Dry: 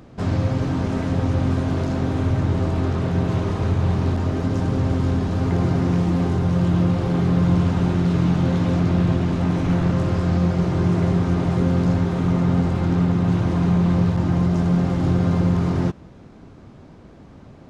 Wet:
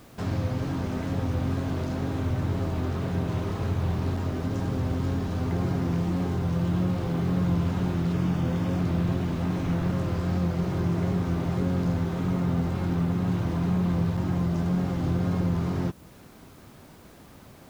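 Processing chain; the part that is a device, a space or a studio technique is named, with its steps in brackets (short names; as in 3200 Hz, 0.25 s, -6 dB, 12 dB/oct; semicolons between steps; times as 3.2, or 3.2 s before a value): noise-reduction cassette on a plain deck (mismatched tape noise reduction encoder only; wow and flutter; white noise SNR 34 dB); 8.12–8.79 notch 4000 Hz, Q 7.6; gain -7 dB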